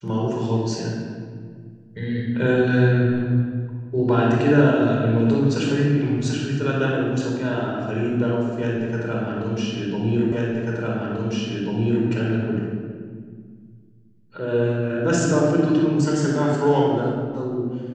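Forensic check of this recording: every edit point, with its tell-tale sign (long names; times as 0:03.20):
0:10.32: the same again, the last 1.74 s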